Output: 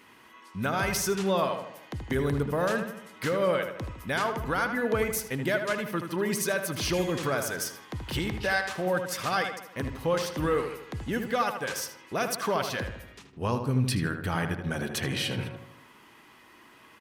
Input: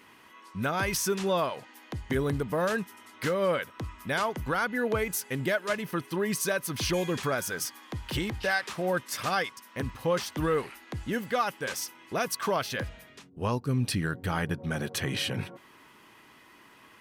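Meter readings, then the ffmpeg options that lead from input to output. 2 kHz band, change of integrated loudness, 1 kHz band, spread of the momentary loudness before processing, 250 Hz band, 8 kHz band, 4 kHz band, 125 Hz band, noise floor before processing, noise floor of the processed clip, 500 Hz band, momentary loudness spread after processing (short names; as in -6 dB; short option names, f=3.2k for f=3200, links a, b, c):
+1.0 dB, +1.0 dB, +1.0 dB, 9 LU, +1.0 dB, 0.0 dB, +0.5 dB, +1.5 dB, -56 dBFS, -55 dBFS, +1.0 dB, 9 LU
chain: -filter_complex "[0:a]asplit=2[a][b];[b]adelay=78,lowpass=f=2.9k:p=1,volume=-7dB,asplit=2[c][d];[d]adelay=78,lowpass=f=2.9k:p=1,volume=0.52,asplit=2[e][f];[f]adelay=78,lowpass=f=2.9k:p=1,volume=0.52,asplit=2[g][h];[h]adelay=78,lowpass=f=2.9k:p=1,volume=0.52,asplit=2[i][j];[j]adelay=78,lowpass=f=2.9k:p=1,volume=0.52,asplit=2[k][l];[l]adelay=78,lowpass=f=2.9k:p=1,volume=0.52[m];[a][c][e][g][i][k][m]amix=inputs=7:normalize=0"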